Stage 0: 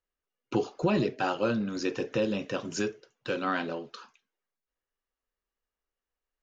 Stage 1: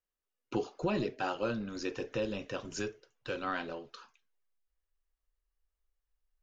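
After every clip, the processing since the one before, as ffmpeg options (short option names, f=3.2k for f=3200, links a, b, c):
-af "asubboost=boost=10.5:cutoff=62,volume=-5dB"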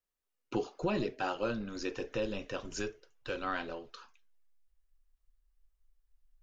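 -af "asubboost=boost=5:cutoff=55"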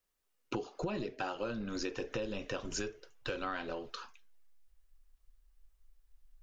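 -af "acompressor=threshold=-41dB:ratio=6,volume=6.5dB"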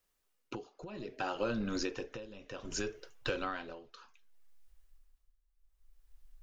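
-af "tremolo=f=0.64:d=0.83,volume=4dB"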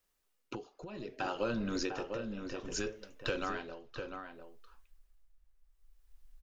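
-filter_complex "[0:a]asplit=2[a][b];[b]adelay=699.7,volume=-6dB,highshelf=f=4k:g=-15.7[c];[a][c]amix=inputs=2:normalize=0"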